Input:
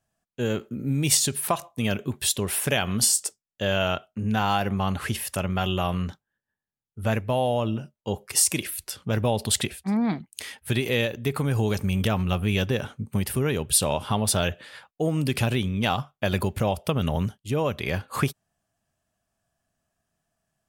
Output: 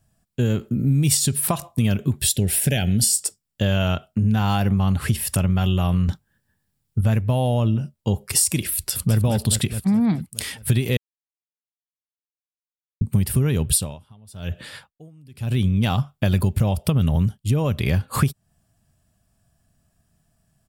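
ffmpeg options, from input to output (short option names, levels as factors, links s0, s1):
-filter_complex "[0:a]asettb=1/sr,asplit=3[s0][s1][s2];[s0]atrim=end=2.224[s3];[s1]atrim=start=2.22:end=3.21,asetpts=PTS-STARTPTS,afade=t=in:d=0.004:c=qsin,afade=t=out:st=0.986:d=0.004:c=qsin,asuperstop=centerf=1100:order=4:qfactor=1.5[s4];[s2]atrim=start=3.206[s5];[s3][s4]acrossfade=d=0.004:c1=hsin:c2=qsin[s6];[s6][s5]acrossfade=d=0.004:c1=qsin:c2=hsin,asettb=1/sr,asplit=3[s7][s8][s9];[s7]atrim=end=6.084[s10];[s8]atrim=start=6.08:end=7.01,asetpts=PTS-STARTPTS,afade=t=in:d=0.004:c=qsin,afade=t=out:st=0.926:d=0.004:c=qsin,acontrast=58[s11];[s9]atrim=start=7.006[s12];[s10][s11]acrossfade=d=0.004:c1=hsin:c2=qsin[s13];[s13][s12]acrossfade=d=0.004:c1=qsin:c2=hsin,asplit=2[s14][s15];[s15]afade=t=in:st=8.74:d=0.01,afade=t=out:st=9.16:d=0.01,aecho=0:1:210|420|630|840|1050|1260|1470|1680:0.668344|0.367589|0.202174|0.111196|0.0611576|0.0336367|0.0185002|0.0101751[s16];[s14][s16]amix=inputs=2:normalize=0,asettb=1/sr,asplit=3[s17][s18][s19];[s17]atrim=end=13.694[s20];[s18]atrim=start=13.69:end=15.71,asetpts=PTS-STARTPTS,afade=t=in:d=0.004:c=qsin,afade=t=out:st=2.016:d=0.004:c=qsin,aeval=exprs='val(0)*pow(10,-38*(0.5-0.5*cos(2*PI*1*n/s))/20)':c=same[s21];[s19]atrim=start=15.706[s22];[s20][s21]acrossfade=d=0.004:c1=hsin:c2=qsin[s23];[s23][s22]acrossfade=d=0.004:c1=qsin:c2=hsin,asplit=3[s24][s25][s26];[s24]atrim=end=10.97,asetpts=PTS-STARTPTS,afade=t=out:st=10.966:d=0.004:c=hsin[s27];[s25]atrim=start=10.97:end=13.01,asetpts=PTS-STARTPTS,volume=0[s28];[s26]atrim=start=13.01,asetpts=PTS-STARTPTS,afade=t=in:d=0.004:c=hsin[s29];[s27][s28][s29]concat=n=3:v=0:a=1,bass=f=250:g=13,treble=f=4000:g=6,bandreject=f=6300:w=8.6,acompressor=threshold=0.0562:ratio=2.5,volume=1.78"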